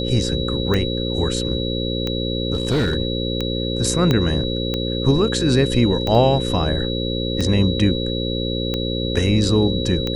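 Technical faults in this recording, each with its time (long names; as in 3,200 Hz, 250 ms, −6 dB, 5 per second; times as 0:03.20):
mains buzz 60 Hz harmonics 9 −24 dBFS
scratch tick 45 rpm −10 dBFS
whistle 3,900 Hz −27 dBFS
0:02.53–0:02.97: clipping −14.5 dBFS
0:04.11: click −6 dBFS
0:06.15: drop-out 2.1 ms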